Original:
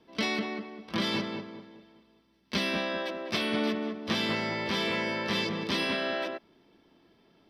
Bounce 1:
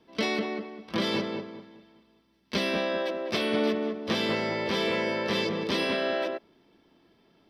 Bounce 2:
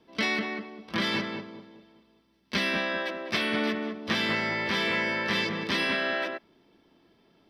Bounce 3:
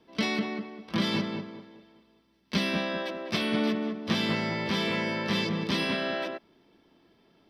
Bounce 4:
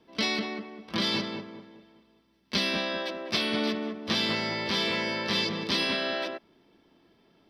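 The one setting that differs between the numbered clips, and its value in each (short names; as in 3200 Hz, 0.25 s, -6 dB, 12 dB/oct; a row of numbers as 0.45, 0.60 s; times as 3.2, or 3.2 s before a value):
dynamic EQ, frequency: 480, 1800, 160, 4500 Hz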